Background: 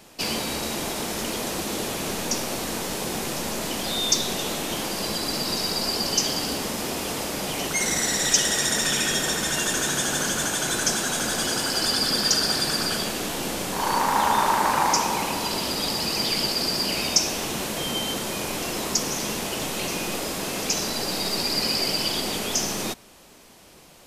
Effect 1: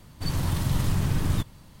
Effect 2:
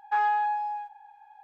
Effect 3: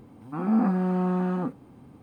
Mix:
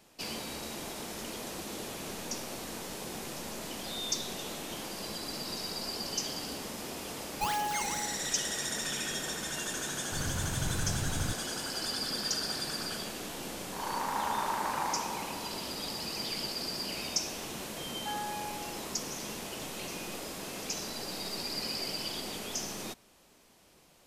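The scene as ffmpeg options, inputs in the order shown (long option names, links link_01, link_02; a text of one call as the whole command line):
ffmpeg -i bed.wav -i cue0.wav -i cue1.wav -filter_complex "[2:a]asplit=2[link_01][link_02];[0:a]volume=-11.5dB[link_03];[link_01]acrusher=samples=15:mix=1:aa=0.000001:lfo=1:lforange=24:lforate=2.2,atrim=end=1.43,asetpts=PTS-STARTPTS,volume=-8dB,afade=type=in:duration=0.004:curve=hsin,afade=type=out:start_time=1.426:duration=0.004:curve=hsin,adelay=7290[link_04];[1:a]atrim=end=1.8,asetpts=PTS-STARTPTS,volume=-9.5dB,afade=type=in:duration=0.004:curve=hsin,afade=type=out:start_time=1.796:duration=0.004:curve=hsin,adelay=9910[link_05];[link_02]atrim=end=1.43,asetpts=PTS-STARTPTS,volume=-13.5dB,afade=type=in:duration=0.004:curve=hsin,afade=type=out:start_time=1.426:duration=0.004:curve=hsin,adelay=17940[link_06];[link_03][link_04][link_05][link_06]amix=inputs=4:normalize=0" out.wav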